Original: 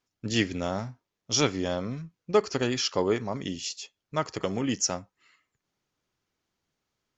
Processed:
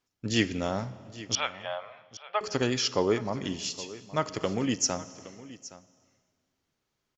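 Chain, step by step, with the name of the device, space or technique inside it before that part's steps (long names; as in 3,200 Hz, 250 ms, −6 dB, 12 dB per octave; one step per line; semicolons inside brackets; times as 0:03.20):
compressed reverb return (on a send at −11 dB: convolution reverb RT60 1.4 s, pre-delay 40 ms + downward compressor 4 to 1, threshold −31 dBFS, peak gain reduction 10.5 dB)
0:01.35–0:02.41: on the sum: elliptic band-pass filter 640–3,200 Hz, stop band 40 dB
single-tap delay 818 ms −17.5 dB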